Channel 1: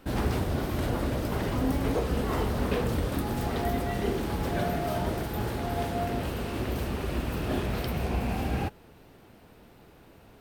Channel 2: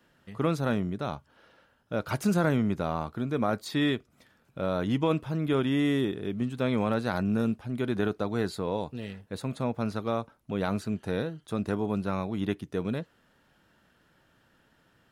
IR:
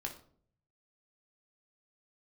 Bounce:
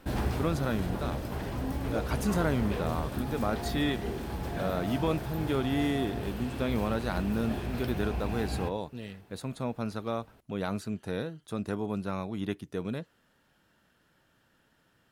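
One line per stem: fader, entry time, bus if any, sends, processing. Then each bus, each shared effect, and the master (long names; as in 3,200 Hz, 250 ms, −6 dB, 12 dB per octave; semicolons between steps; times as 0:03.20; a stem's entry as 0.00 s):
−2.0 dB, 0.00 s, send −12 dB, automatic ducking −7 dB, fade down 0.55 s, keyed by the second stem
−3.5 dB, 0.00 s, no send, high-shelf EQ 5,000 Hz +4.5 dB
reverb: on, RT60 0.55 s, pre-delay 15 ms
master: no processing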